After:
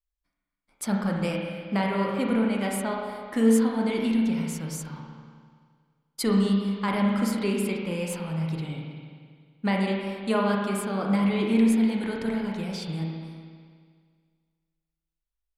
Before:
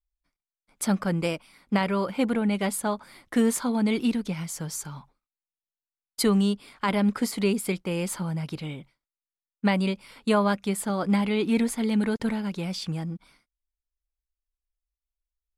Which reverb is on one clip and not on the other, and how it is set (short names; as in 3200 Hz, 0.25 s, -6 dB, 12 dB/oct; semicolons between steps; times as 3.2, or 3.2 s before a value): spring tank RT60 1.9 s, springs 31/40 ms, chirp 25 ms, DRR -1 dB; gain -4 dB